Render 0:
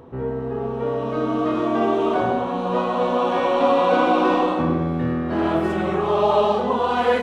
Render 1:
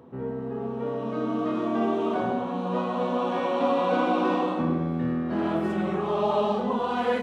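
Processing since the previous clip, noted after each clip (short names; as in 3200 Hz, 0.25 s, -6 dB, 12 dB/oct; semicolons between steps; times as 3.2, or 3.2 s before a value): HPF 100 Hz; bell 210 Hz +7.5 dB 0.56 oct; gain -7 dB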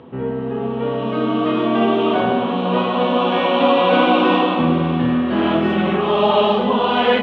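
synth low-pass 3100 Hz, resonance Q 3.2; diffused feedback echo 0.55 s, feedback 48%, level -13 dB; gain +8.5 dB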